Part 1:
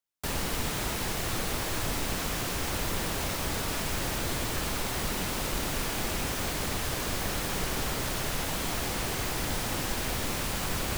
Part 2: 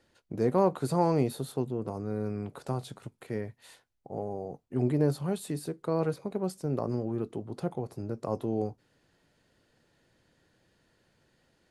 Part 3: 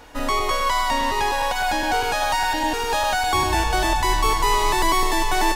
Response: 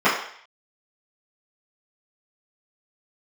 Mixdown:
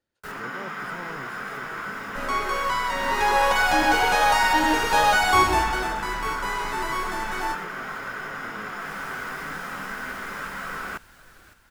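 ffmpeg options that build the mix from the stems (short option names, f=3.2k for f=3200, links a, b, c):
-filter_complex "[0:a]equalizer=f=1.5k:w=2.5:g=15,flanger=delay=0.9:depth=7.5:regen=69:speed=0.38:shape=triangular,volume=-10dB,asplit=3[a][b][c];[b]volume=-12.5dB[d];[c]volume=-10.5dB[e];[1:a]volume=-16dB,asplit=2[f][g];[2:a]adelay=2000,volume=-1dB,afade=t=in:st=2.94:d=0.53:silence=0.398107,afade=t=out:st=5.29:d=0.6:silence=0.237137,asplit=2[h][i];[i]volume=-20.5dB[j];[g]apad=whole_len=483961[k];[a][k]sidechaincompress=threshold=-58dB:ratio=8:attack=16:release=244[l];[3:a]atrim=start_sample=2205[m];[d][j]amix=inputs=2:normalize=0[n];[n][m]afir=irnorm=-1:irlink=0[o];[e]aecho=0:1:560|1120|1680|2240|2800|3360:1|0.46|0.212|0.0973|0.0448|0.0206[p];[l][f][h][o][p]amix=inputs=5:normalize=0"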